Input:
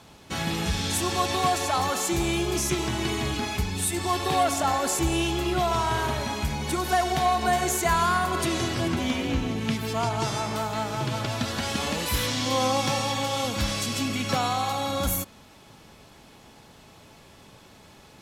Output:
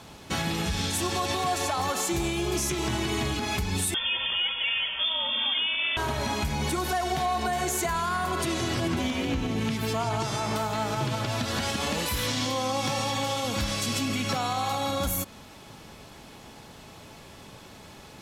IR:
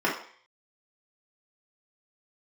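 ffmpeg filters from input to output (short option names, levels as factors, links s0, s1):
-filter_complex "[0:a]alimiter=limit=0.075:level=0:latency=1:release=177,asettb=1/sr,asplit=3[s0][s1][s2];[s0]atrim=end=3.944[s3];[s1]atrim=start=3.94:end=5.97,asetpts=PTS-STARTPTS,afade=t=in:d=0.004:c=qsin,afade=t=out:st=2.026:d=0.004:c=qsin,lowpass=f=3100:t=q:w=0.5098,lowpass=f=3100:t=q:w=0.6013,lowpass=f=3100:t=q:w=0.9,lowpass=f=3100:t=q:w=2.563,afreqshift=-3600[s4];[s2]atrim=start=5.966[s5];[s3][s4]acrossfade=d=0.004:c1=hsin:c2=qsin[s6];[s6][s5]acrossfade=d=0.004:c1=qsin:c2=hsin,volume=1.58"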